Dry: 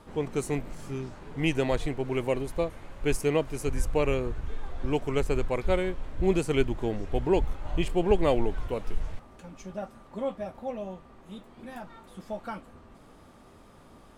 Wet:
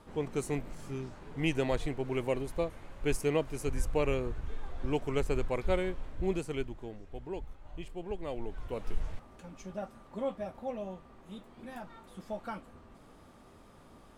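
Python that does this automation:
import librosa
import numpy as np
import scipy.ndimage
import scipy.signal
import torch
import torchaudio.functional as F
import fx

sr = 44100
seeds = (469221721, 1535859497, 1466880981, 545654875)

y = fx.gain(x, sr, db=fx.line((5.99, -4.0), (7.03, -15.5), (8.25, -15.5), (8.9, -3.0)))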